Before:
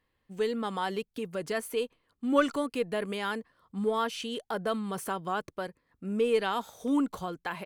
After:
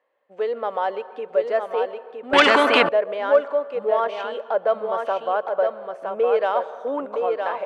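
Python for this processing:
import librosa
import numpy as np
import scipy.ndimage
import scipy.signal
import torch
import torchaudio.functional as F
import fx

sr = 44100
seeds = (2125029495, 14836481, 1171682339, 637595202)

p1 = scipy.signal.sosfilt(scipy.signal.butter(2, 2200.0, 'lowpass', fs=sr, output='sos'), x)
p2 = 10.0 ** (-25.0 / 20.0) * np.tanh(p1 / 10.0 ** (-25.0 / 20.0))
p3 = p1 + (p2 * librosa.db_to_amplitude(-5.0))
p4 = fx.highpass_res(p3, sr, hz=580.0, q=4.8)
p5 = p4 + fx.echo_single(p4, sr, ms=964, db=-5.0, dry=0)
p6 = fx.rev_plate(p5, sr, seeds[0], rt60_s=1.6, hf_ratio=0.5, predelay_ms=110, drr_db=15.5)
y = fx.spectral_comp(p6, sr, ratio=4.0, at=(2.33, 2.89))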